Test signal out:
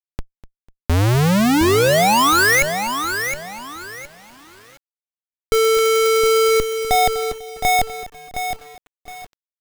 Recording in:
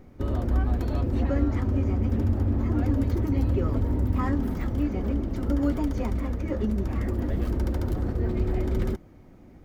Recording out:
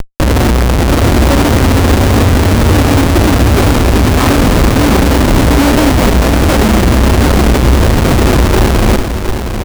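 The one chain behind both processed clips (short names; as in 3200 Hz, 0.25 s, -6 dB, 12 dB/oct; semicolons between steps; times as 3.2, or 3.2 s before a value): elliptic low-pass 1800 Hz, stop band 70 dB; Schmitt trigger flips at -41.5 dBFS; on a send: feedback echo 0.248 s, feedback 40%, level -16.5 dB; on the sum: maximiser +19 dB; lo-fi delay 0.715 s, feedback 35%, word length 6-bit, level -7.5 dB; gain -1.5 dB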